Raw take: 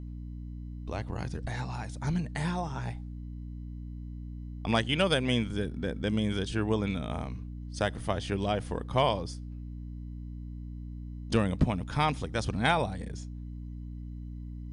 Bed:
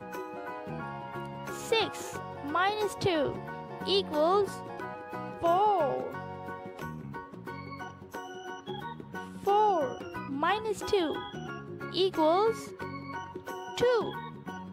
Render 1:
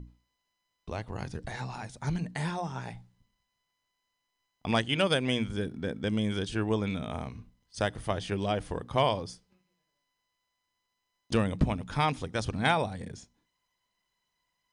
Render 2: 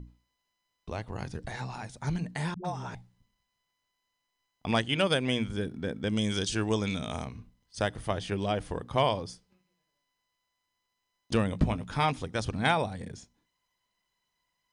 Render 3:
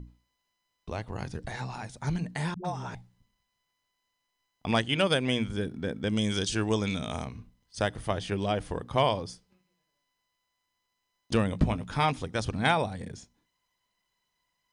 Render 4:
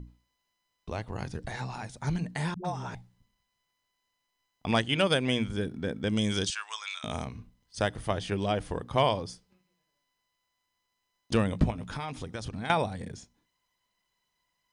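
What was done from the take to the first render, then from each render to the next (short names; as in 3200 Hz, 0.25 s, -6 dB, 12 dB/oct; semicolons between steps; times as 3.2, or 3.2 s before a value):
notches 60/120/180/240/300 Hz
2.54–2.95 dispersion highs, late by 0.106 s, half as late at 340 Hz; 6.16–7.25 bell 6300 Hz +13 dB 1.5 oct; 11.51–12.11 doubler 18 ms -10.5 dB
gain +1 dB
6.5–7.04 elliptic band-pass 1100–8400 Hz, stop band 60 dB; 11.7–12.7 compressor, threshold -32 dBFS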